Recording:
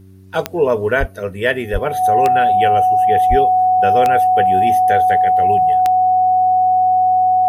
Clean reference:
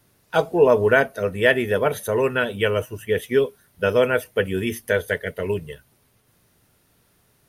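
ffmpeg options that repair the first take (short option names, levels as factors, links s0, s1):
-filter_complex "[0:a]adeclick=t=4,bandreject=f=95.1:t=h:w=4,bandreject=f=190.2:t=h:w=4,bandreject=f=285.3:t=h:w=4,bandreject=f=380.4:t=h:w=4,bandreject=f=740:w=30,asplit=3[s0][s1][s2];[s0]afade=t=out:st=0.99:d=0.02[s3];[s1]highpass=f=140:w=0.5412,highpass=f=140:w=1.3066,afade=t=in:st=0.99:d=0.02,afade=t=out:st=1.11:d=0.02[s4];[s2]afade=t=in:st=1.11:d=0.02[s5];[s3][s4][s5]amix=inputs=3:normalize=0,asplit=3[s6][s7][s8];[s6]afade=t=out:st=1.72:d=0.02[s9];[s7]highpass=f=140:w=0.5412,highpass=f=140:w=1.3066,afade=t=in:st=1.72:d=0.02,afade=t=out:st=1.84:d=0.02[s10];[s8]afade=t=in:st=1.84:d=0.02[s11];[s9][s10][s11]amix=inputs=3:normalize=0,asplit=3[s12][s13][s14];[s12]afade=t=out:st=3.29:d=0.02[s15];[s13]highpass=f=140:w=0.5412,highpass=f=140:w=1.3066,afade=t=in:st=3.29:d=0.02,afade=t=out:st=3.41:d=0.02[s16];[s14]afade=t=in:st=3.41:d=0.02[s17];[s15][s16][s17]amix=inputs=3:normalize=0"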